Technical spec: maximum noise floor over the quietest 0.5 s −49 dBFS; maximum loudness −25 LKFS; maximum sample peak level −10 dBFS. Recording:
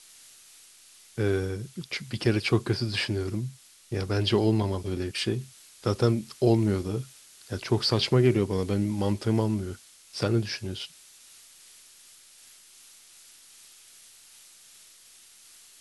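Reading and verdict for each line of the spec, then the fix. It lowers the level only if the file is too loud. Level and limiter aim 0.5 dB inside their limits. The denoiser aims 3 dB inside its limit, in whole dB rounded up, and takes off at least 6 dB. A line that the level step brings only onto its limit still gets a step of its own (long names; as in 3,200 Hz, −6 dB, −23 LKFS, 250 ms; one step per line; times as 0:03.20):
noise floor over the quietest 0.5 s −54 dBFS: in spec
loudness −27.5 LKFS: in spec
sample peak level −9.0 dBFS: out of spec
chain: brickwall limiter −10.5 dBFS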